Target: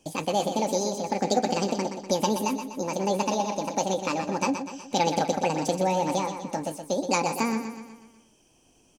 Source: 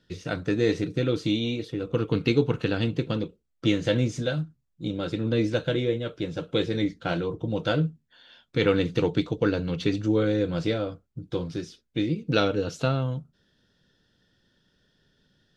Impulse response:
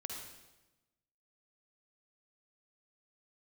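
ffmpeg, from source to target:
-filter_complex "[0:a]highshelf=f=5.1k:g=5.5,asplit=2[a][b];[b]acompressor=threshold=-36dB:ratio=6,volume=1dB[c];[a][c]amix=inputs=2:normalize=0,aecho=1:1:213|426|639|852|1065|1278:0.376|0.195|0.102|0.0528|0.0275|0.0143,asetrate=76440,aresample=44100,volume=-3dB"

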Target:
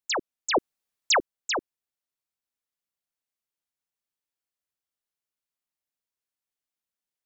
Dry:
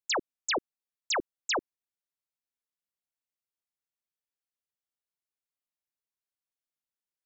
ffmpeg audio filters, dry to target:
-filter_complex "[0:a]asettb=1/sr,asplit=3[a][b][c];[a]atrim=end=0.544[d];[b]atrim=start=0.54:end=1.19,asetpts=PTS-STARTPTS,afade=t=in:d=0.004:c=qsin,afade=t=out:st=0.646:d=0.004:c=qsin,acontrast=63[e];[c]atrim=start=1.186[f];[d][e]acrossfade=d=0.004:c1=hsin:c2=qsin[g];[g][f]acrossfade=d=0.004:c1=qsin:c2=hsin,volume=1.5dB"

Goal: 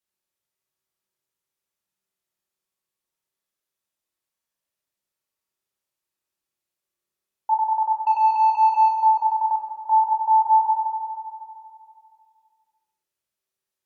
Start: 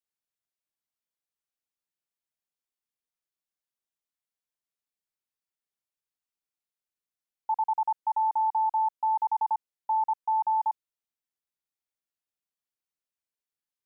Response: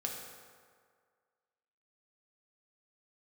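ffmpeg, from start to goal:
-filter_complex "[0:a]asettb=1/sr,asplit=3[a][b][c];[a]atrim=end=8.044[d];[b]atrim=start=8.04:end=8.99,asetpts=PTS-STARTPTS,afade=t=in:d=0.004:c=qsin,afade=t=out:st=0.946:d=0.004:c=qsin,adynamicsmooth=sensitivity=1.5:basefreq=870[e];[c]atrim=start=8.986[f];[d][e]acrossfade=d=0.004:c1=hsin:c2=qsin[g];[g][f]acrossfade=d=0.004:c1=qsin:c2=hsin[h];[1:a]atrim=start_sample=2205,asetrate=33516,aresample=44100[i];[h][i]afir=irnorm=-1:irlink=0,volume=4.5dB"

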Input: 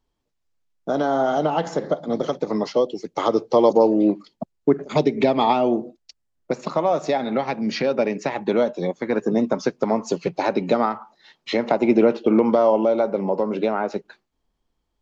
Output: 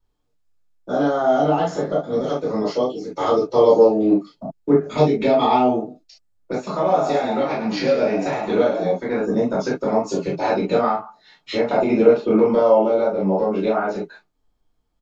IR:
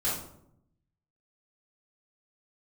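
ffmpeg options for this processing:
-filter_complex "[0:a]asplit=3[a][b][c];[a]afade=t=out:st=6.84:d=0.02[d];[b]asplit=6[e][f][g][h][i][j];[f]adelay=105,afreqshift=77,volume=-8dB[k];[g]adelay=210,afreqshift=154,volume=-15.7dB[l];[h]adelay=315,afreqshift=231,volume=-23.5dB[m];[i]adelay=420,afreqshift=308,volume=-31.2dB[n];[j]adelay=525,afreqshift=385,volume=-39dB[o];[e][k][l][m][n][o]amix=inputs=6:normalize=0,afade=t=in:st=6.84:d=0.02,afade=t=out:st=8.91:d=0.02[p];[c]afade=t=in:st=8.91:d=0.02[q];[d][p][q]amix=inputs=3:normalize=0[r];[1:a]atrim=start_sample=2205,atrim=end_sample=3528[s];[r][s]afir=irnorm=-1:irlink=0,volume=-6dB"

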